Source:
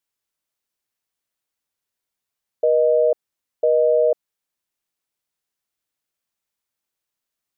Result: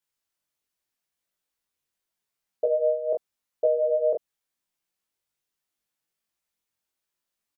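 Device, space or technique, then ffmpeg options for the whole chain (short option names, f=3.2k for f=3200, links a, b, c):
double-tracked vocal: -filter_complex "[0:a]asplit=2[a][b];[b]adelay=22,volume=-3dB[c];[a][c]amix=inputs=2:normalize=0,flanger=delay=16:depth=5.7:speed=0.83"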